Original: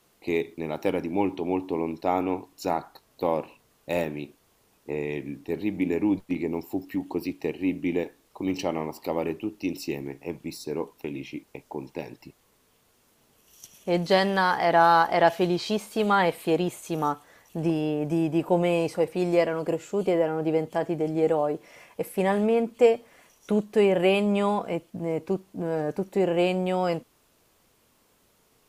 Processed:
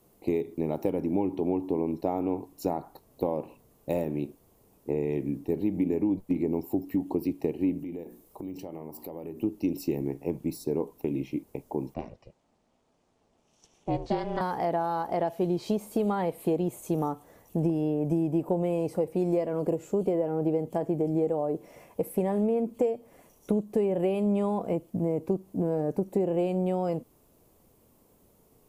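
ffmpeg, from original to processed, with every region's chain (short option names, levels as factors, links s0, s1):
-filter_complex "[0:a]asettb=1/sr,asplit=3[s0][s1][s2];[s0]atrim=end=7.794[s3];[s1]atrim=start=7.79:end=9.43,asetpts=PTS-STARTPTS,afade=t=in:d=0.004:c=qsin,afade=t=out:st=1.636:d=0.004:c=qsin,highshelf=f=9700:g=9.5,bandreject=f=60:t=h:w=6,bandreject=f=120:t=h:w=6,bandreject=f=180:t=h:w=6,bandreject=f=240:t=h:w=6,bandreject=f=300:t=h:w=6,bandreject=f=360:t=h:w=6,acompressor=threshold=0.01:ratio=5:attack=3.2:release=140:knee=1:detection=peak[s4];[s2]atrim=start=9.426[s5];[s3][s4]acrossfade=d=0.004:c1=hsin:c2=qsin[s6];[s6][s5]acrossfade=d=0.004:c1=qsin:c2=hsin,asettb=1/sr,asplit=3[s7][s8][s9];[s7]atrim=end=11.944[s10];[s8]atrim=start=11.94:end=14.41,asetpts=PTS-STARTPTS,afade=t=in:d=0.004:c=qsin,afade=t=out:st=2.466:d=0.004:c=qsin,lowpass=f=9000:w=0.5412,lowpass=f=9000:w=1.3066,acrossover=split=340 6500:gain=0.224 1 0.141[s11][s12][s13];[s11][s12][s13]amix=inputs=3:normalize=0,aeval=exprs='val(0)*sin(2*PI*210*n/s)':c=same[s14];[s9]atrim=start=14.406[s15];[s10][s14]acrossfade=d=0.004:c1=hsin:c2=qsin[s16];[s16][s15]acrossfade=d=0.004:c1=qsin:c2=hsin,equalizer=f=1500:t=o:w=0.96:g=-6.5,acompressor=threshold=0.0398:ratio=6,equalizer=f=3700:t=o:w=2.9:g=-14.5,volume=2"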